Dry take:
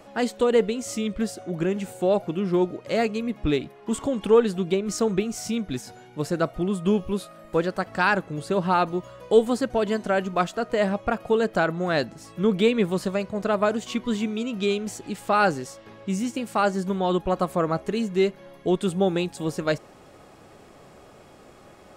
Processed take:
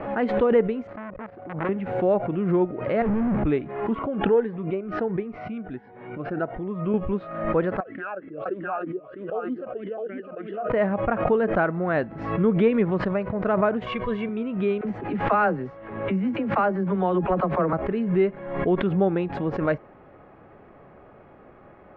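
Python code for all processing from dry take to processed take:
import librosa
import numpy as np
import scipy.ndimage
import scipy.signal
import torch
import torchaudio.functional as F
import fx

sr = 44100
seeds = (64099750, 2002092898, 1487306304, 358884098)

y = fx.chain(x, sr, fx.median_filter(points=15),
    fx.level_steps(step_db=14),
    fx.transformer_sat(knee_hz=1800.0), at=(0.87, 1.69))
y = fx.chain(y, sr, fx.clip_1bit(),
    fx.lowpass(hz=1100.0, slope=6),
    fx.low_shelf(hz=360.0, db=8.5), at=(3.02, 3.44))
y = fx.chain(y, sr, fx.gaussian_blur(sigma=2.5),
    fx.low_shelf(hz=220.0, db=-12.0),
    fx.notch_cascade(direction='rising', hz=1.4), at=(3.95, 6.94))
y = fx.chain(y, sr, fx.echo_single(ms=655, db=-5.5),
    fx.vowel_sweep(vowels='a-i', hz=3.2), at=(7.8, 10.7))
y = fx.chain(y, sr, fx.high_shelf(hz=3500.0, db=6.5),
    fx.comb(ms=1.8, depth=0.91), at=(13.84, 14.29))
y = fx.chain(y, sr, fx.median_filter(points=3),
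    fx.dispersion(late='lows', ms=45.0, hz=380.0),
    fx.band_squash(depth_pct=40), at=(14.81, 17.73))
y = scipy.signal.sosfilt(scipy.signal.butter(4, 2100.0, 'lowpass', fs=sr, output='sos'), y)
y = fx.pre_swell(y, sr, db_per_s=63.0)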